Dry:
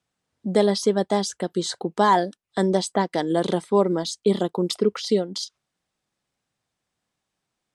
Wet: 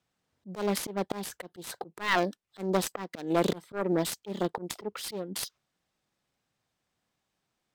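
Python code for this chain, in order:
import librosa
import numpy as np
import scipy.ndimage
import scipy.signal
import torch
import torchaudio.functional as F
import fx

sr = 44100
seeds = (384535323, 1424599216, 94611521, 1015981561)

y = fx.self_delay(x, sr, depth_ms=0.44)
y = fx.auto_swell(y, sr, attack_ms=299.0)
y = np.interp(np.arange(len(y)), np.arange(len(y))[::2], y[::2])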